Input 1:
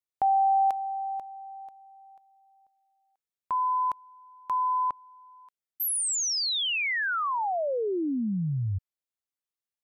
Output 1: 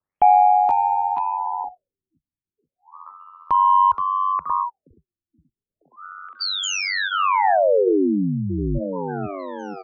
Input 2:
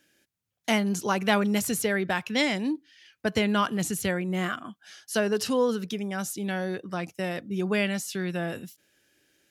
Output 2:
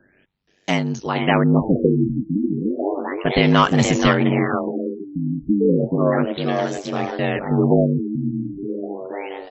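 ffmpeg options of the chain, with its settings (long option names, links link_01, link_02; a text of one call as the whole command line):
ffmpeg -i in.wav -filter_complex "[0:a]highpass=40,lowshelf=frequency=120:gain=8,bandreject=frequency=1500:width=12,tremolo=f=0.52:d=0.7,asubboost=boost=4.5:cutoff=52,acrossover=split=5900[link_01][link_02];[link_01]acontrast=62[link_03];[link_03][link_02]amix=inputs=2:normalize=0,bandreject=frequency=438.3:width_type=h:width=4,bandreject=frequency=876.6:width_type=h:width=4,bandreject=frequency=1314.9:width_type=h:width=4,asoftclip=type=tanh:threshold=-8.5dB,asplit=2[link_04][link_05];[link_05]asplit=7[link_06][link_07][link_08][link_09][link_10][link_11][link_12];[link_06]adelay=474,afreqshift=81,volume=-6.5dB[link_13];[link_07]adelay=948,afreqshift=162,volume=-11.5dB[link_14];[link_08]adelay=1422,afreqshift=243,volume=-16.6dB[link_15];[link_09]adelay=1896,afreqshift=324,volume=-21.6dB[link_16];[link_10]adelay=2370,afreqshift=405,volume=-26.6dB[link_17];[link_11]adelay=2844,afreqshift=486,volume=-31.7dB[link_18];[link_12]adelay=3318,afreqshift=567,volume=-36.7dB[link_19];[link_13][link_14][link_15][link_16][link_17][link_18][link_19]amix=inputs=7:normalize=0[link_20];[link_04][link_20]amix=inputs=2:normalize=0,aeval=exprs='val(0)*sin(2*PI*48*n/s)':channel_layout=same,afftfilt=real='re*lt(b*sr/1024,310*pow(8000/310,0.5+0.5*sin(2*PI*0.33*pts/sr)))':imag='im*lt(b*sr/1024,310*pow(8000/310,0.5+0.5*sin(2*PI*0.33*pts/sr)))':win_size=1024:overlap=0.75,volume=8.5dB" out.wav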